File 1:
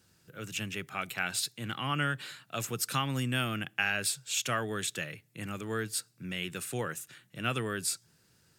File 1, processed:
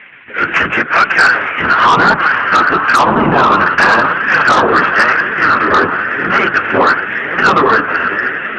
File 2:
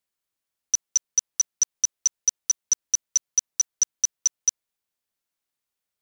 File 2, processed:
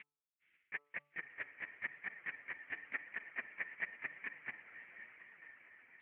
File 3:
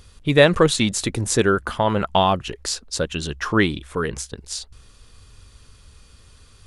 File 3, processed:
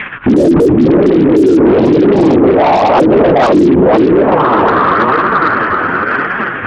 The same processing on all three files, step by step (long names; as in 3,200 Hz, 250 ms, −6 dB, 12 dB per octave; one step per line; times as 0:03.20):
variable-slope delta modulation 16 kbit/s
low-shelf EQ 80 Hz +11 dB
on a send: feedback delay with all-pass diffusion 542 ms, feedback 66%, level −10.5 dB
on the sum: linear-prediction vocoder at 8 kHz whisper
flanger 0.94 Hz, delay 4.4 ms, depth 8.1 ms, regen −17%
envelope filter 320–2,100 Hz, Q 3.6, down, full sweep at −22 dBFS
in parallel at −10.5 dB: sine wavefolder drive 9 dB, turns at −35.5 dBFS
on the sum: parametric band 260 Hz +8.5 dB 2.9 octaves
hum removal 145.2 Hz, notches 9
boost into a limiter +34.5 dB
level −1 dB